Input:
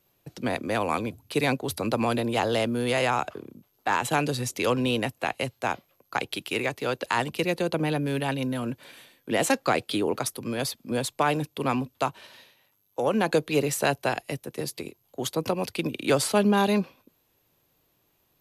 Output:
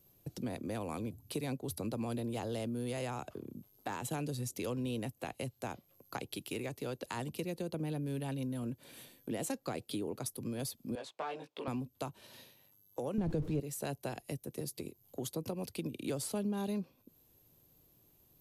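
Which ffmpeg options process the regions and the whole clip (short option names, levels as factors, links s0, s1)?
-filter_complex "[0:a]asettb=1/sr,asplit=3[s0][s1][s2];[s0]atrim=end=10.954[s3];[s1]atrim=start=10.95:end=11.68,asetpts=PTS-STARTPTS,afade=t=in:d=0.004:c=qsin,afade=t=out:st=0.726:d=0.004:c=qsin,aeval=exprs='clip(val(0),-1,0.0841)':c=same,highpass=610,lowpass=3000,asplit=2[s4][s5];[s5]adelay=18,volume=0.794[s6];[s4][s6]amix=inputs=2:normalize=0,atrim=end_sample=32193[s7];[s2]atrim=start=11.676[s8];[s3][s7]acrossfade=d=0.004:c1=hsin:c2=qsin[s9];[s9][s8]acrossfade=d=0.004:c1=qsin:c2=hsin,asettb=1/sr,asplit=3[s10][s11][s12];[s10]atrim=end=13.184[s13];[s11]atrim=start=13.18:end=13.6,asetpts=PTS-STARTPTS,afade=t=in:d=0.004:c=qsin,afade=t=out:st=0.416:d=0.004:c=qsin,aeval=exprs='val(0)+0.5*0.0473*sgn(val(0))':c=same,aemphasis=mode=reproduction:type=riaa[s14];[s12]atrim=start=13.596[s15];[s13][s14]acrossfade=d=0.004:c1=hsin:c2=qsin[s16];[s16][s15]acrossfade=d=0.004:c1=qsin:c2=hsin,equalizer=f=1700:w=0.32:g=-13.5,acompressor=threshold=0.00447:ratio=2.5,volume=1.88"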